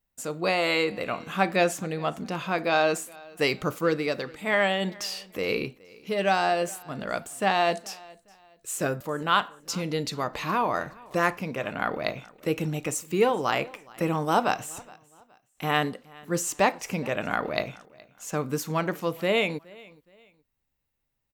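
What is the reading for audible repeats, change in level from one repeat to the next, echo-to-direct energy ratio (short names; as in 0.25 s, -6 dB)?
2, -10.0 dB, -23.0 dB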